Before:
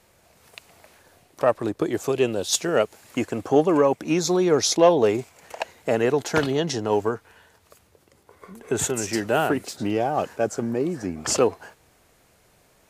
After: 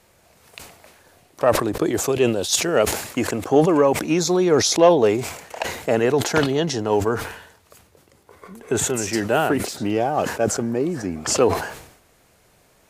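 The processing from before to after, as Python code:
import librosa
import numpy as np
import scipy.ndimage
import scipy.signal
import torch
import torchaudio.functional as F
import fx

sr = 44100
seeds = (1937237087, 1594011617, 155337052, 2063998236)

y = fx.sustainer(x, sr, db_per_s=77.0)
y = y * librosa.db_to_amplitude(2.0)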